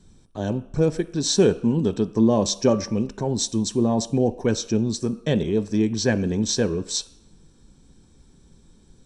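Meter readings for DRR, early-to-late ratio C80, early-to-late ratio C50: 11.0 dB, 19.0 dB, 17.0 dB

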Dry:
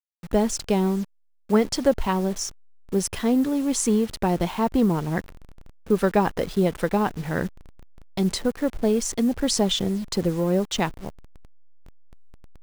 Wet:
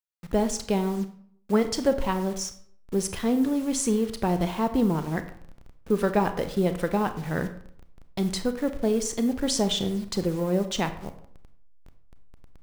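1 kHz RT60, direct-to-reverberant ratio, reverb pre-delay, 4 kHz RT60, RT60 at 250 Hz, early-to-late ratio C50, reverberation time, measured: 0.60 s, 9.0 dB, 27 ms, 0.40 s, 0.65 s, 12.0 dB, 0.60 s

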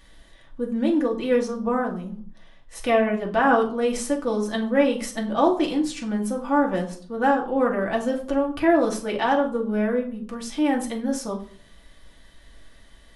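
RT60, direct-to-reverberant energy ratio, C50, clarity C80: 0.50 s, −1.0 dB, 11.0 dB, 15.5 dB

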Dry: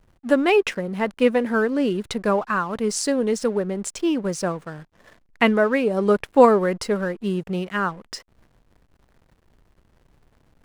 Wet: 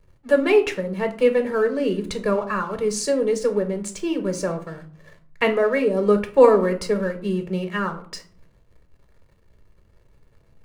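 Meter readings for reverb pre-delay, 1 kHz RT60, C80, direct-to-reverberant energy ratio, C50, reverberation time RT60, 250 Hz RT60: 6 ms, 0.45 s, 18.5 dB, 7.0 dB, 13.5 dB, 0.50 s, 0.80 s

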